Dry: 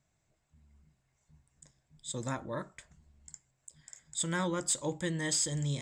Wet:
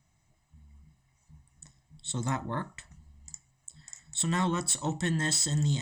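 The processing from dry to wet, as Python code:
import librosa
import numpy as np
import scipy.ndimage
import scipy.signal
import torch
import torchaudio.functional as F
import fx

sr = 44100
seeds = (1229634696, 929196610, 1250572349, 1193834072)

p1 = x + 0.66 * np.pad(x, (int(1.0 * sr / 1000.0), 0))[:len(x)]
p2 = np.clip(p1, -10.0 ** (-28.5 / 20.0), 10.0 ** (-28.5 / 20.0))
y = p1 + (p2 * librosa.db_to_amplitude(-4.0))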